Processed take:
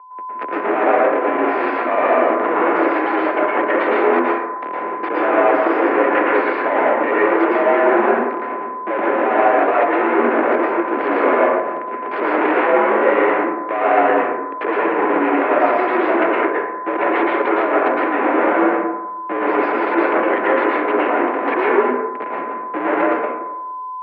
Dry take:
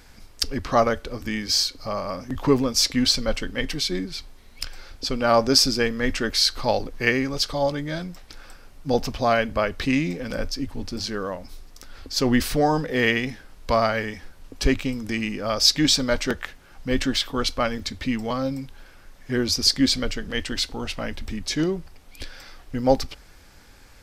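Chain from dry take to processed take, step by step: in parallel at +0.5 dB: compressor 12:1, threshold -33 dBFS, peak gain reduction 21 dB; on the sum: Schmitt trigger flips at -26.5 dBFS; companded quantiser 4-bit; whine 950 Hz -44 dBFS; mistuned SSB +64 Hz 260–2200 Hz; reverb RT60 1.0 s, pre-delay 0.103 s, DRR -5.5 dB; gain +5.5 dB

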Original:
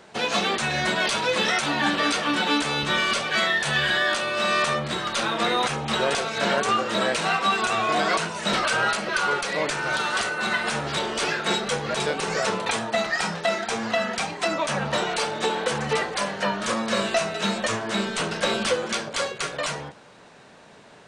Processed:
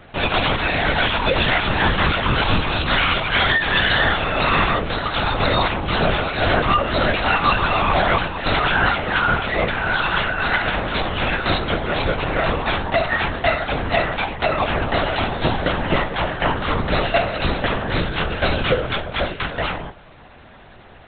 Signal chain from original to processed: LPC vocoder at 8 kHz whisper; gain +5.5 dB

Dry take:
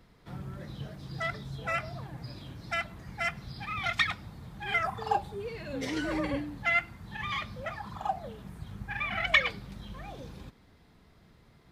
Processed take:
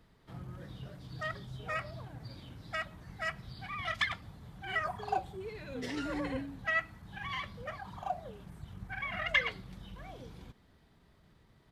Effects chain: pitch shift -1 st; gain -4.5 dB

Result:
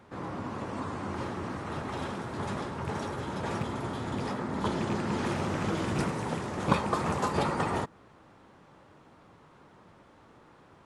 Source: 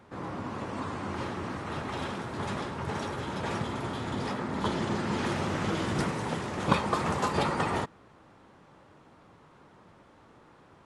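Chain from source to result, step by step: rattling part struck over -29 dBFS, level -27 dBFS; dynamic EQ 3000 Hz, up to -4 dB, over -45 dBFS, Q 0.72

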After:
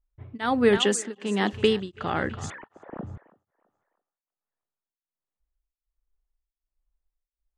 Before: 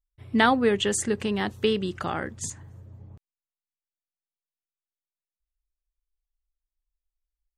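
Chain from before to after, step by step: 2.5–3.04 sine-wave speech; in parallel at 0 dB: compressor, threshold -31 dBFS, peak gain reduction 15.5 dB; 0.77–1.53 on the sum: elliptic high-pass 190 Hz; thinning echo 0.328 s, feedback 37%, high-pass 520 Hz, level -14.5 dB; low-pass opened by the level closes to 1200 Hz, open at -17 dBFS; beating tremolo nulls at 1.3 Hz; gain +1.5 dB

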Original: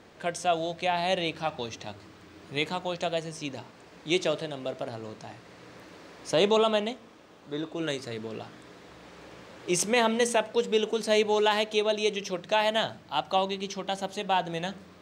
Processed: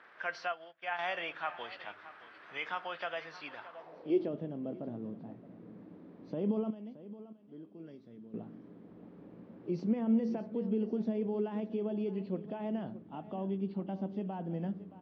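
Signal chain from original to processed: nonlinear frequency compression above 2500 Hz 1.5:1; limiter -21 dBFS, peak gain reduction 9 dB; 6.7–8.34 pre-emphasis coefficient 0.8; on a send: feedback echo 0.622 s, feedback 15%, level -16 dB; on the sum: band-pass sweep 1500 Hz -> 220 Hz, 3.62–4.35; 0.52–0.99 upward expander 2.5:1, over -54 dBFS; gain +5 dB

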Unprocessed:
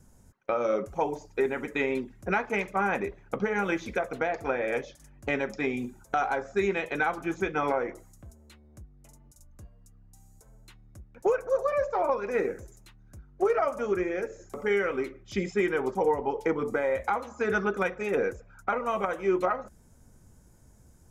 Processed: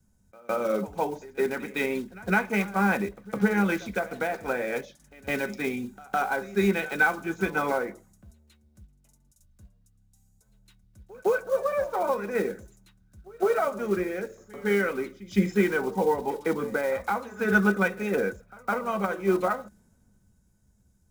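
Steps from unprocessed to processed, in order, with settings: block floating point 5-bit; low shelf 64 Hz -6 dB; small resonant body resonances 200/1500/3800 Hz, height 11 dB, ringing for 95 ms; pre-echo 0.159 s -17 dB; three-band expander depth 40%

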